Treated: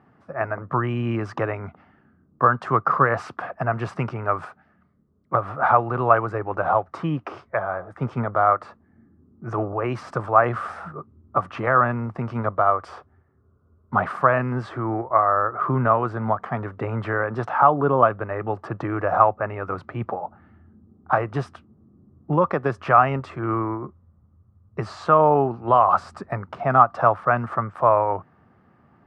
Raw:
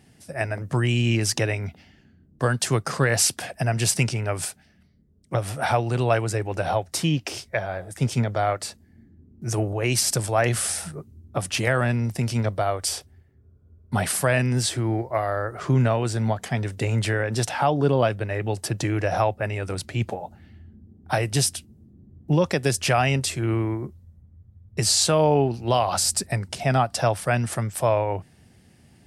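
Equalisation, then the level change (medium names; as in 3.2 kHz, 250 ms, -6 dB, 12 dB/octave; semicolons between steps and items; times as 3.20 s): high-pass 170 Hz 6 dB/octave; resonant low-pass 1.2 kHz, resonance Q 6; 0.0 dB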